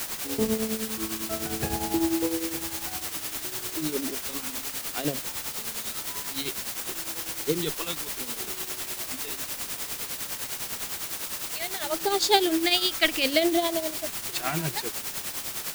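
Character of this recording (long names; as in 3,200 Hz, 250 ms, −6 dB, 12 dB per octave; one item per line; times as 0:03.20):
phaser sweep stages 2, 0.6 Hz, lowest notch 480–1,700 Hz
a quantiser's noise floor 6 bits, dither triangular
tremolo triangle 9.9 Hz, depth 70%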